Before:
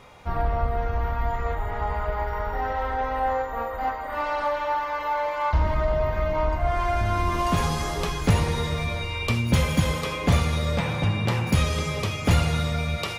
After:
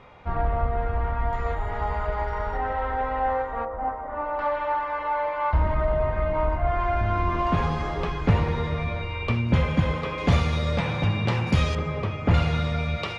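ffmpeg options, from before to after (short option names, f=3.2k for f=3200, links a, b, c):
-af "asetnsamples=n=441:p=0,asendcmd='1.33 lowpass f 6900;2.57 lowpass f 2900;3.65 lowpass f 1100;4.39 lowpass f 2400;10.18 lowpass f 4900;11.75 lowpass f 1800;12.34 lowpass f 3600',lowpass=2.8k"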